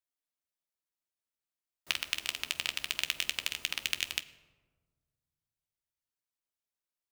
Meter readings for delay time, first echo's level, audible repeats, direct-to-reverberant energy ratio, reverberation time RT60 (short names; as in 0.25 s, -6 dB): none, none, none, 7.5 dB, 1.5 s